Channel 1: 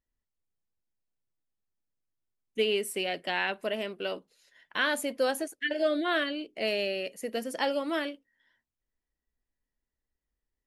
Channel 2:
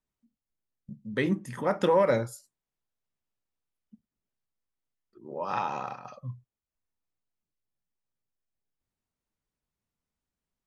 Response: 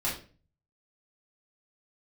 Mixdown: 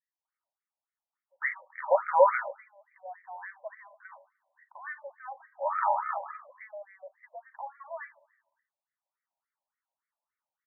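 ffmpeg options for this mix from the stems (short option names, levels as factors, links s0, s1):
-filter_complex "[0:a]aecho=1:1:1.1:0.62,alimiter=limit=0.0631:level=0:latency=1:release=81,volume=0.668,asplit=3[s0][s1][s2];[s1]volume=0.0891[s3];[s2]volume=0.112[s4];[1:a]adelay=250,volume=1.41,asplit=2[s5][s6];[s6]volume=0.282[s7];[2:a]atrim=start_sample=2205[s8];[s3][s7]amix=inputs=2:normalize=0[s9];[s9][s8]afir=irnorm=-1:irlink=0[s10];[s4]aecho=0:1:74|148|222|296|370|444|518|592|666:1|0.58|0.336|0.195|0.113|0.0656|0.0381|0.0221|0.0128[s11];[s0][s5][s10][s11]amix=inputs=4:normalize=0,afftfilt=real='re*between(b*sr/1024,720*pow(1700/720,0.5+0.5*sin(2*PI*3.5*pts/sr))/1.41,720*pow(1700/720,0.5+0.5*sin(2*PI*3.5*pts/sr))*1.41)':imag='im*between(b*sr/1024,720*pow(1700/720,0.5+0.5*sin(2*PI*3.5*pts/sr))/1.41,720*pow(1700/720,0.5+0.5*sin(2*PI*3.5*pts/sr))*1.41)':win_size=1024:overlap=0.75"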